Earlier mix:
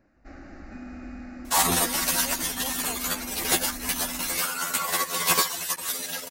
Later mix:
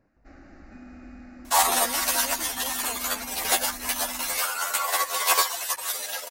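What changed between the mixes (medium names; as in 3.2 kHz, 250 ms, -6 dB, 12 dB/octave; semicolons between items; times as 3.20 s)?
first sound -5.0 dB; second sound: add resonant high-pass 650 Hz, resonance Q 1.6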